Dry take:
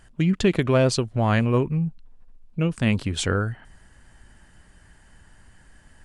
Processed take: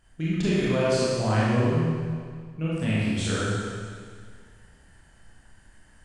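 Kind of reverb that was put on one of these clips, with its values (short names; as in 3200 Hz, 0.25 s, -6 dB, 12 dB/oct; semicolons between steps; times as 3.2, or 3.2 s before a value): Schroeder reverb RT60 1.9 s, combs from 25 ms, DRR -8.5 dB; gain -11 dB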